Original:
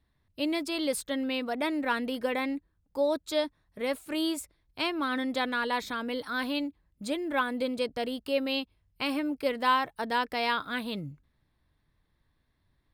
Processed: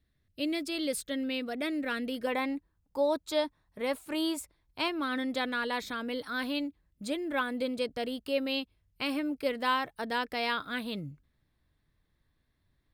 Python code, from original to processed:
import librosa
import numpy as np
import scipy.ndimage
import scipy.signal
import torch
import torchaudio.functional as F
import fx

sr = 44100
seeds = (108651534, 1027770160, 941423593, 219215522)

y = fx.peak_eq(x, sr, hz=930.0, db=fx.steps((0.0, -13.5), (2.27, 4.0), (4.88, -4.0)), octaves=0.57)
y = y * librosa.db_to_amplitude(-1.5)